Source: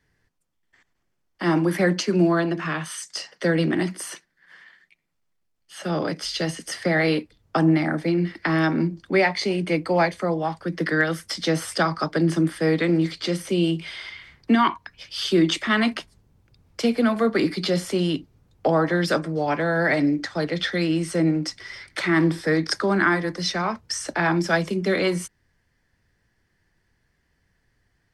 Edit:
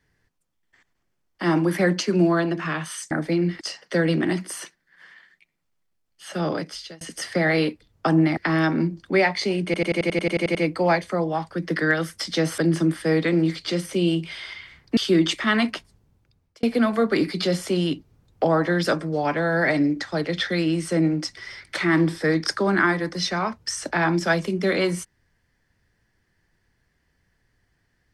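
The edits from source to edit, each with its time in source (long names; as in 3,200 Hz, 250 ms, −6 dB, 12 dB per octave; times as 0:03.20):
0:06.00–0:06.51: fade out
0:07.87–0:08.37: move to 0:03.11
0:09.65: stutter 0.09 s, 11 plays
0:11.68–0:12.14: remove
0:14.53–0:15.20: remove
0:15.90–0:16.86: fade out equal-power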